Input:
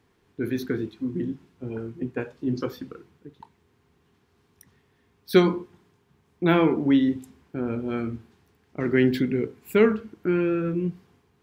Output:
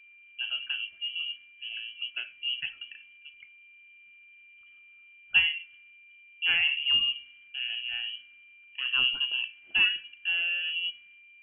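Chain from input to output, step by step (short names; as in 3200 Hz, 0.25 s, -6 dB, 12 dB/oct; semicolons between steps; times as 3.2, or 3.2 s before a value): whine 720 Hz -46 dBFS; inverted band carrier 3100 Hz; band shelf 750 Hz -9 dB; gain -6 dB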